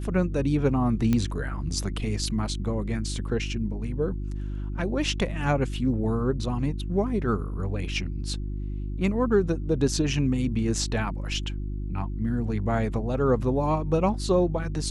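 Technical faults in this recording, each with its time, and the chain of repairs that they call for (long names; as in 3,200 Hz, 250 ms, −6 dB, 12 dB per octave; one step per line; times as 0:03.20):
mains hum 50 Hz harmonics 7 −31 dBFS
0:01.13: click −12 dBFS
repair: click removal
hum removal 50 Hz, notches 7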